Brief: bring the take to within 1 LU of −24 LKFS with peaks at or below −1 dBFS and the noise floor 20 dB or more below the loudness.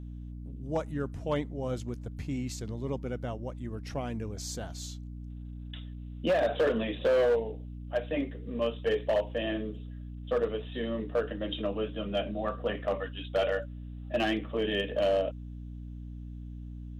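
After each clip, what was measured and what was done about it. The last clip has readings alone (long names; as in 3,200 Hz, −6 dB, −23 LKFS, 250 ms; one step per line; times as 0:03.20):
share of clipped samples 0.8%; peaks flattened at −21.0 dBFS; mains hum 60 Hz; hum harmonics up to 300 Hz; level of the hum −39 dBFS; integrated loudness −32.0 LKFS; sample peak −21.0 dBFS; target loudness −24.0 LKFS
→ clipped peaks rebuilt −21 dBFS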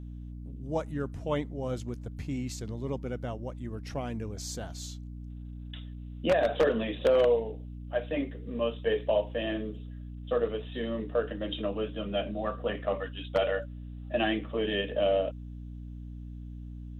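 share of clipped samples 0.0%; mains hum 60 Hz; hum harmonics up to 300 Hz; level of the hum −39 dBFS
→ mains-hum notches 60/120/180/240/300 Hz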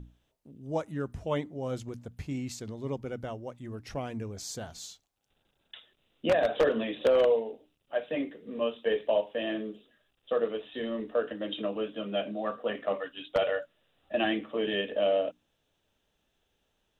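mains hum none found; integrated loudness −31.5 LKFS; sample peak −12.0 dBFS; target loudness −24.0 LKFS
→ level +7.5 dB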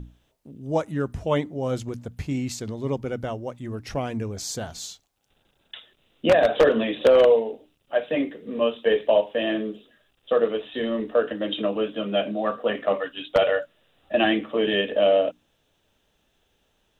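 integrated loudness −24.0 LKFS; sample peak −4.5 dBFS; background noise floor −69 dBFS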